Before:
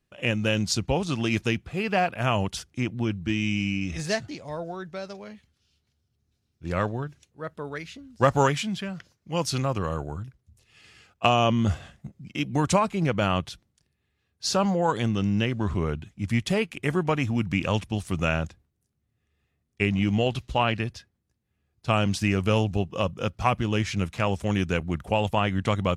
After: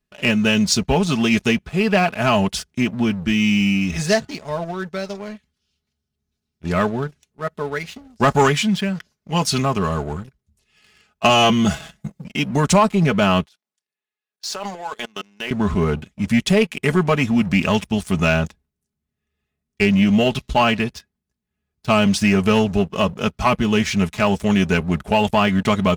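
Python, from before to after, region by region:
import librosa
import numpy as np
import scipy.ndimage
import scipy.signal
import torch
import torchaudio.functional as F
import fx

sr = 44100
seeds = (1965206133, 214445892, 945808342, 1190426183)

y = fx.chain(x, sr, fx.high_shelf(hz=2500.0, db=6.0),
    fx.comb(ms=6.1, depth=0.49), at=(11.29, 12.25))
y = fx.chain(y, sr, fx.highpass(hz=540.0, slope=12),
    fx.level_steps(step_db=18), at=(13.45, 15.51))
y = fx.notch(y, sr, hz=490.0, q=12.0)
y = y + 0.6 * np.pad(y, (int(4.7 * sr / 1000.0), 0))[:len(y)]
y = fx.leveller(y, sr, passes=2)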